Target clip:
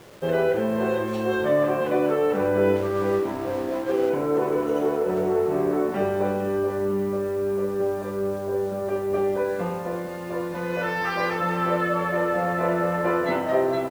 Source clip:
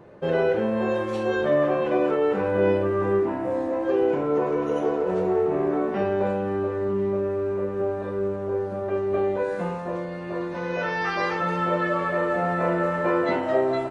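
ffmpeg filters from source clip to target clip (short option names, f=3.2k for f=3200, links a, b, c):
-filter_complex "[0:a]acrusher=bits=7:mix=0:aa=0.000001,asplit=2[a][b];[b]adelay=460.6,volume=-11dB,highshelf=f=4k:g=-10.4[c];[a][c]amix=inputs=2:normalize=0,asettb=1/sr,asplit=3[d][e][f];[d]atrim=end=2.764[g];[e]atrim=start=2.76:end=4.1,asetpts=PTS-STARTPTS,afade=t=in:d=0.004:c=qsin,afade=t=out:st=1.336:d=0.004:c=qsin,aeval=exprs='sgn(val(0))*max(abs(val(0))-0.0133,0)':c=same[h];[f]atrim=start=4.096[i];[g][h]acrossfade=d=0.004:c1=hsin:c2=qsin[j];[j][i]acrossfade=d=0.004:c1=qsin:c2=hsin"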